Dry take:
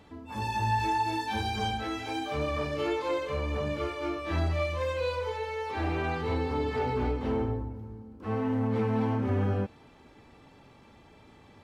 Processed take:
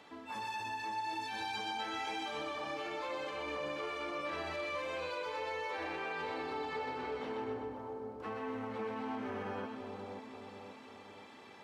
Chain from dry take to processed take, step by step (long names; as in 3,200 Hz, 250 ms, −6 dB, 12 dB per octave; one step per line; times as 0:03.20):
meter weighting curve A
brickwall limiter −30 dBFS, peak gain reduction 10.5 dB
downward compressor 2.5 to 1, threshold −42 dBFS, peak gain reduction 6 dB
on a send: echo with a time of its own for lows and highs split 1,100 Hz, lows 533 ms, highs 126 ms, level −4 dB
on the sum: level +1.5 dB